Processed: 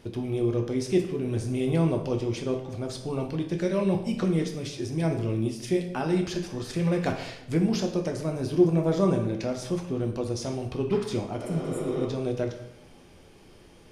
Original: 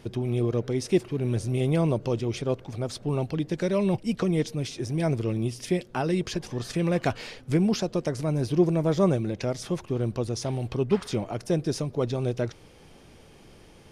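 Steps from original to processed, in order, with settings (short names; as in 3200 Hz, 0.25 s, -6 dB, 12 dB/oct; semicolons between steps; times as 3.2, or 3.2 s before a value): plate-style reverb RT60 0.81 s, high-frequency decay 0.75×, DRR 3 dB; spectral repair 11.43–12.01, 250–6900 Hz both; gain -3 dB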